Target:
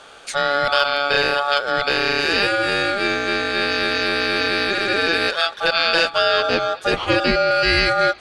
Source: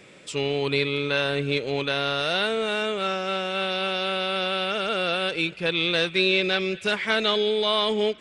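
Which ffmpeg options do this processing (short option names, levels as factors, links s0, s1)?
-filter_complex "[0:a]aeval=exprs='val(0)*sin(2*PI*1000*n/s)':c=same,asettb=1/sr,asplit=3[s0][s1][s2];[s0]atrim=end=6.104[s3];[s1]atrim=start=6.1:end=7.51,asetpts=PTS-STARTPTS,afade=t=in:d=0.004:c=qsin,afade=t=out:st=1.406:d=0.004:c=qsin,tiltshelf=f=750:g=5[s4];[s2]atrim=start=7.506[s5];[s3][s4]acrossfade=d=0.004:c1=hsin:c2=qsin[s6];[s6][s5]acrossfade=d=0.004:c1=qsin:c2=hsin,asoftclip=type=hard:threshold=0.316,volume=2.82"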